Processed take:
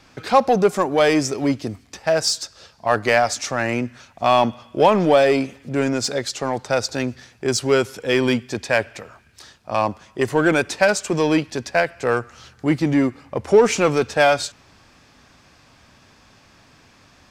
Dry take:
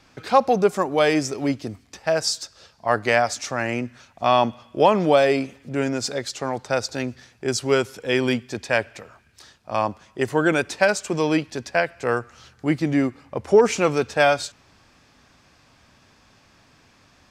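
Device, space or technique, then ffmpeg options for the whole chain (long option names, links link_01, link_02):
parallel distortion: -filter_complex "[0:a]asplit=2[link_01][link_02];[link_02]asoftclip=type=hard:threshold=-20dB,volume=-5dB[link_03];[link_01][link_03]amix=inputs=2:normalize=0"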